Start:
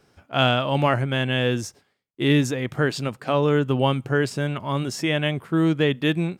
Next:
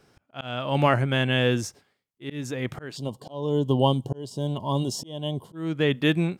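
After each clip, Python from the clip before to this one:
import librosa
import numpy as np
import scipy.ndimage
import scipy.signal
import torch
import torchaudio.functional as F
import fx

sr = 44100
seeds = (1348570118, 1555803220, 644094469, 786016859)

y = fx.spec_box(x, sr, start_s=2.97, length_s=2.58, low_hz=1100.0, high_hz=2800.0, gain_db=-22)
y = fx.auto_swell(y, sr, attack_ms=423.0)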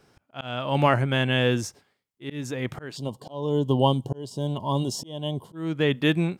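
y = fx.peak_eq(x, sr, hz=930.0, db=2.0, octaves=0.36)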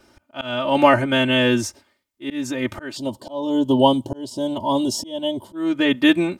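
y = x + 0.95 * np.pad(x, (int(3.3 * sr / 1000.0), 0))[:len(x)]
y = y * librosa.db_to_amplitude(3.5)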